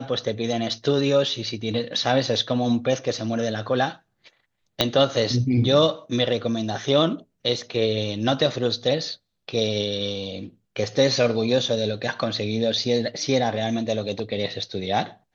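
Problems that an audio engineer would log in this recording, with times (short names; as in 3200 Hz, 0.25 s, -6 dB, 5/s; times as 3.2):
4.81 pop -3 dBFS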